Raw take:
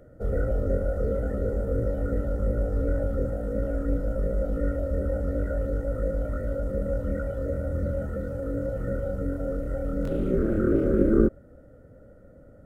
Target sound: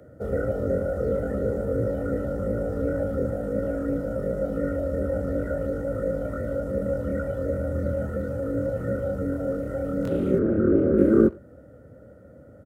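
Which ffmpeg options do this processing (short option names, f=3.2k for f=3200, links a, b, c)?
-filter_complex "[0:a]asplit=3[a][b][c];[a]afade=t=out:st=10.38:d=0.02[d];[b]lowpass=f=1.1k:p=1,afade=t=in:st=10.38:d=0.02,afade=t=out:st=10.97:d=0.02[e];[c]afade=t=in:st=10.97:d=0.02[f];[d][e][f]amix=inputs=3:normalize=0,asplit=2[g][h];[h]adelay=90,highpass=300,lowpass=3.4k,asoftclip=type=hard:threshold=-15.5dB,volume=-23dB[i];[g][i]amix=inputs=2:normalize=0,acrossover=split=140|730[j][k][l];[j]asoftclip=type=tanh:threshold=-27dB[m];[m][k][l]amix=inputs=3:normalize=0,highpass=f=68:w=0.5412,highpass=f=68:w=1.3066,volume=3.5dB"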